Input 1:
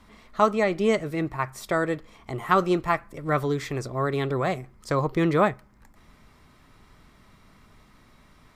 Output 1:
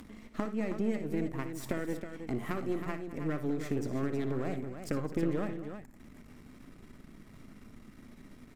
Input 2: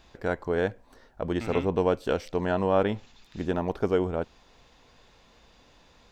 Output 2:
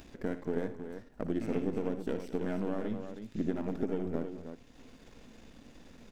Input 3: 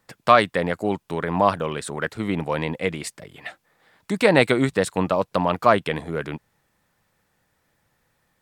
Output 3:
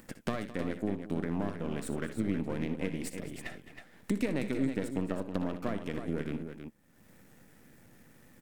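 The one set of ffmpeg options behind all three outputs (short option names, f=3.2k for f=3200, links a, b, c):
-af "aeval=exprs='if(lt(val(0),0),0.251*val(0),val(0))':c=same,acompressor=threshold=-33dB:ratio=5,equalizer=f=250:t=o:w=1:g=10,equalizer=f=1k:t=o:w=1:g=-7,equalizer=f=4k:t=o:w=1:g=-6,aecho=1:1:60|78|213|320:0.237|0.141|0.168|0.376,acompressor=mode=upward:threshold=-45dB:ratio=2.5"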